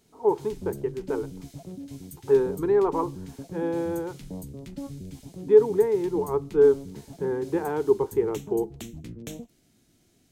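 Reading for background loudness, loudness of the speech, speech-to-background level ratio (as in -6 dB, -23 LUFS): -40.5 LUFS, -25.0 LUFS, 15.5 dB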